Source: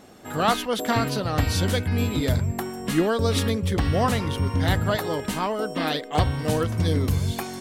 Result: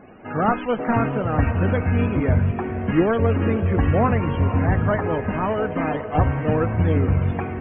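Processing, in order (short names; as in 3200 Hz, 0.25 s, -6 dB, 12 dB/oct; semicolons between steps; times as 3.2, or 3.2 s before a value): CVSD 16 kbps; loudest bins only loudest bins 64; diffused feedback echo 0.503 s, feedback 46%, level -11.5 dB; gain +4 dB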